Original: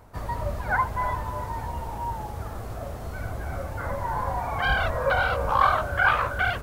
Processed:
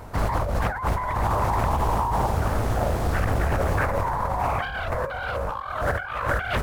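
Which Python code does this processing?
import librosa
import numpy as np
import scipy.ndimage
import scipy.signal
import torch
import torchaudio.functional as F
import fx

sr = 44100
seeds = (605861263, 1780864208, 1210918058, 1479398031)

y = fx.over_compress(x, sr, threshold_db=-32.0, ratio=-1.0)
y = fx.doppler_dist(y, sr, depth_ms=0.94)
y = F.gain(torch.from_numpy(y), 7.0).numpy()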